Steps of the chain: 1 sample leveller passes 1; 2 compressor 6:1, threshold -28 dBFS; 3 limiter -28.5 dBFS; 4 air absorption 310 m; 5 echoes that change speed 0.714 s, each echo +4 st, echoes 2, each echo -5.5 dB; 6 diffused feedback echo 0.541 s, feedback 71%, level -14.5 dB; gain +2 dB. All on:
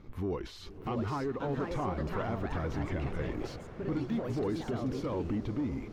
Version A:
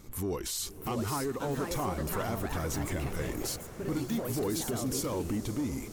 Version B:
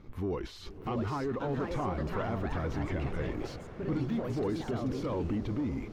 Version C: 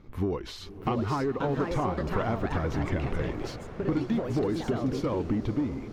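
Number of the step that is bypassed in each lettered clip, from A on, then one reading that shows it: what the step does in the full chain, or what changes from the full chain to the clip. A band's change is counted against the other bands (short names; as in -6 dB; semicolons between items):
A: 4, 8 kHz band +20.5 dB; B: 2, mean gain reduction 9.0 dB; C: 3, mean gain reduction 3.5 dB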